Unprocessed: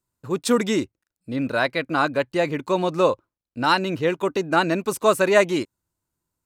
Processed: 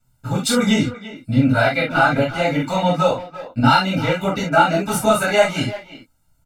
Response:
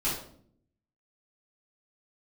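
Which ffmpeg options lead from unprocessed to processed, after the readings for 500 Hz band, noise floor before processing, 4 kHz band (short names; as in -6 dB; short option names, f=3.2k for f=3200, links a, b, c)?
+1.5 dB, under -85 dBFS, +6.0 dB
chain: -filter_complex "[0:a]aphaser=in_gain=1:out_gain=1:delay=3.8:decay=0.46:speed=1.4:type=sinusoidal,acompressor=threshold=-31dB:ratio=2,aecho=1:1:1.4:0.94,asplit=2[a][b];[b]adelay=340,highpass=300,lowpass=3.4k,asoftclip=type=hard:threshold=-21.5dB,volume=-13dB[c];[a][c]amix=inputs=2:normalize=0[d];[1:a]atrim=start_sample=2205,atrim=end_sample=3528[e];[d][e]afir=irnorm=-1:irlink=0,volume=2.5dB"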